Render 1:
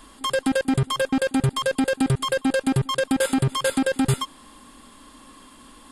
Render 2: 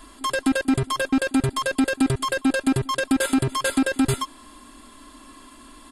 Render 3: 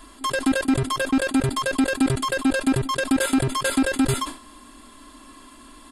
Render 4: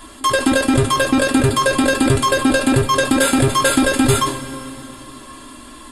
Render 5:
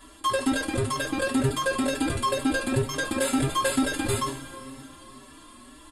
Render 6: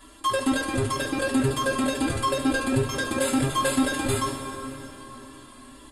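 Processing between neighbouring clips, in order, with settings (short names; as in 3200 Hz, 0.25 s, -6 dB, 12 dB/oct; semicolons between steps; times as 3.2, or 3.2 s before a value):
comb 3 ms, depth 54%
sustainer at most 140 dB/s
two-slope reverb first 0.22 s, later 3.1 s, from -18 dB, DRR 2 dB; gain +6.5 dB
endless flanger 4.8 ms +2.1 Hz; gain -7.5 dB
plate-style reverb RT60 3.9 s, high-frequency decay 0.65×, pre-delay 0 ms, DRR 7 dB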